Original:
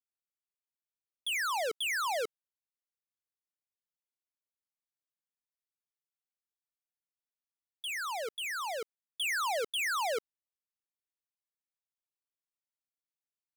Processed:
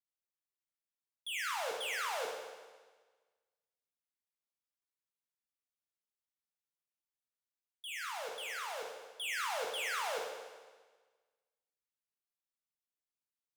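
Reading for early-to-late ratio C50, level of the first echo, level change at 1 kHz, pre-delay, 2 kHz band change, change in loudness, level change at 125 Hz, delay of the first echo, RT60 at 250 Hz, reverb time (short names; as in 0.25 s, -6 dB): 2.5 dB, none, -5.0 dB, 13 ms, -4.5 dB, -5.0 dB, n/a, none, 1.4 s, 1.4 s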